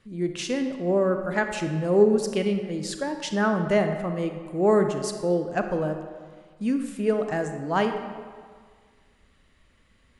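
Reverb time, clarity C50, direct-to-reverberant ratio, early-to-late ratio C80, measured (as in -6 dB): 1.8 s, 7.0 dB, 6.0 dB, 8.0 dB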